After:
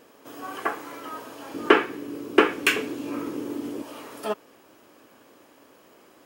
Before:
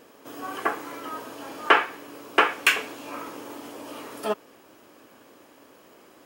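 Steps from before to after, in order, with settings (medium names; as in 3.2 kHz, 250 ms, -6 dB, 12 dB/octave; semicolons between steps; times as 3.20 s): 1.54–3.82 s: resonant low shelf 500 Hz +10 dB, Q 1.5; trim -1.5 dB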